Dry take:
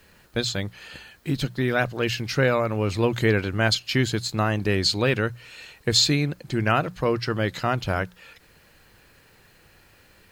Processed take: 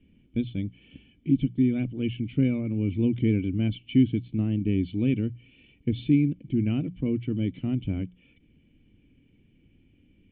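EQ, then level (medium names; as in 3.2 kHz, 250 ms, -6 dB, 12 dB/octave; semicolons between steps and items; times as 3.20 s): cascade formant filter i; bass shelf 310 Hz +10 dB; +1.5 dB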